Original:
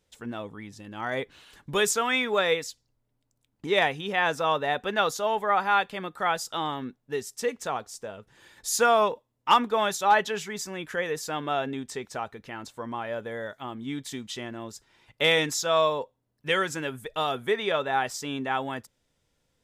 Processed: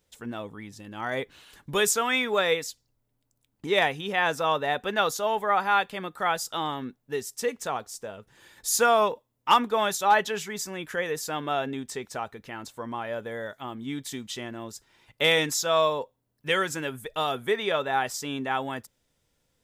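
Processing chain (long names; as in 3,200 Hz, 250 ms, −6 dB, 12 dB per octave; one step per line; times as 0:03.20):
high-shelf EQ 12,000 Hz +10 dB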